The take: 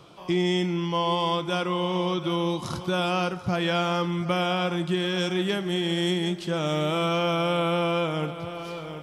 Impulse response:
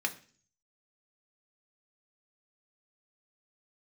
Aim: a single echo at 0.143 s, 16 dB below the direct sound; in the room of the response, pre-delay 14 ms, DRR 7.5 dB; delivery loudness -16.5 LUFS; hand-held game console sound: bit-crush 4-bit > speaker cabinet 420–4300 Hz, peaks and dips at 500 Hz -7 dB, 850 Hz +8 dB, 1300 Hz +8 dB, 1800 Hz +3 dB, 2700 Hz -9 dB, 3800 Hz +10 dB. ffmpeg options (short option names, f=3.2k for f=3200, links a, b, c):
-filter_complex "[0:a]aecho=1:1:143:0.158,asplit=2[a][b];[1:a]atrim=start_sample=2205,adelay=14[c];[b][c]afir=irnorm=-1:irlink=0,volume=-13dB[d];[a][d]amix=inputs=2:normalize=0,acrusher=bits=3:mix=0:aa=0.000001,highpass=420,equalizer=f=500:t=q:w=4:g=-7,equalizer=f=850:t=q:w=4:g=8,equalizer=f=1.3k:t=q:w=4:g=8,equalizer=f=1.8k:t=q:w=4:g=3,equalizer=f=2.7k:t=q:w=4:g=-9,equalizer=f=3.8k:t=q:w=4:g=10,lowpass=f=4.3k:w=0.5412,lowpass=f=4.3k:w=1.3066,volume=6dB"